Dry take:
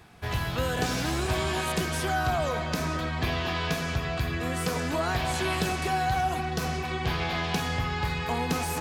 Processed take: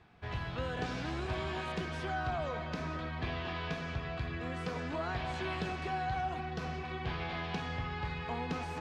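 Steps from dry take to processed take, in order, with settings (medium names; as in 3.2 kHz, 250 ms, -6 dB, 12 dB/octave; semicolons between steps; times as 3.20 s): low-pass 3.6 kHz 12 dB/octave; trim -8.5 dB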